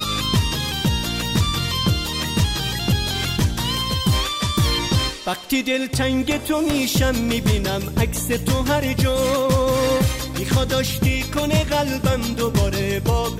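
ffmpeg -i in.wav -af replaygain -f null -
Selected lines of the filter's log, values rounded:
track_gain = +2.4 dB
track_peak = 0.261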